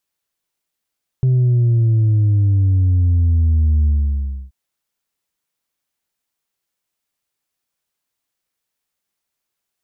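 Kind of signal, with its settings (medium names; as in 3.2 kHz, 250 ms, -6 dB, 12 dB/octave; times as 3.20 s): sub drop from 130 Hz, over 3.28 s, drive 2 dB, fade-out 0.65 s, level -11.5 dB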